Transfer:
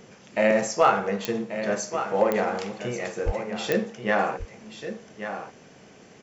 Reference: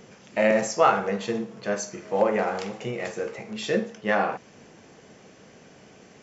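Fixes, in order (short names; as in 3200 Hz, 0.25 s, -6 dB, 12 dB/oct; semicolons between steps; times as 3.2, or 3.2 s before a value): clip repair -8.5 dBFS; de-click; 3.25–3.37 HPF 140 Hz 24 dB/oct; inverse comb 1.135 s -10 dB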